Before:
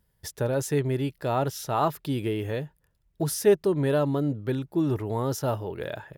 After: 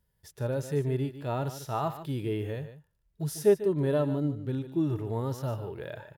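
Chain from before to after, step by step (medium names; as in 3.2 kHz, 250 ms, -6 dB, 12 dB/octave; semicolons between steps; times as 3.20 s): delay 148 ms -13.5 dB; harmonic-percussive split percussive -12 dB; trim -2 dB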